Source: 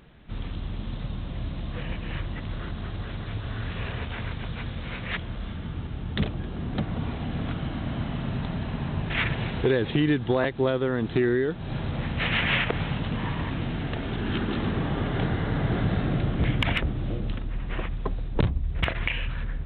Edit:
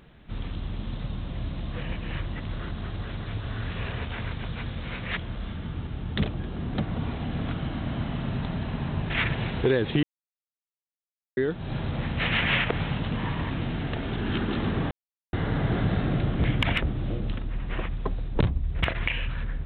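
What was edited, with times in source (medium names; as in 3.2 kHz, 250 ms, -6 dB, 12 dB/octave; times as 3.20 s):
10.03–11.37 s: mute
14.91–15.33 s: mute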